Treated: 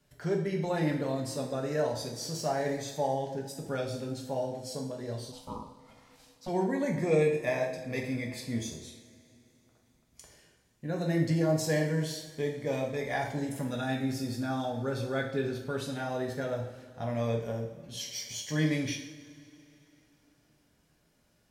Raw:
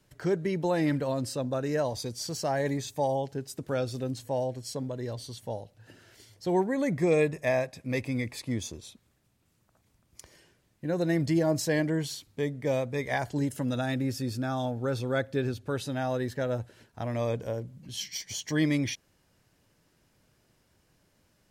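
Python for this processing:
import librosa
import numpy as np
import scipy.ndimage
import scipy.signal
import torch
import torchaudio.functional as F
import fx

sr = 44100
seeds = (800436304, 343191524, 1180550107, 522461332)

y = fx.rev_double_slope(x, sr, seeds[0], early_s=0.61, late_s=3.3, knee_db=-19, drr_db=-0.5)
y = fx.ring_mod(y, sr, carrier_hz=380.0, at=(5.31, 6.47), fade=0.02)
y = F.gain(torch.from_numpy(y), -5.0).numpy()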